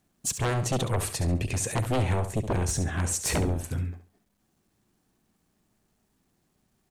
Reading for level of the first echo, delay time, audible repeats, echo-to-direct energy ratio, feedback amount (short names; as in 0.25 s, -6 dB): -10.0 dB, 69 ms, 3, -9.5 dB, 26%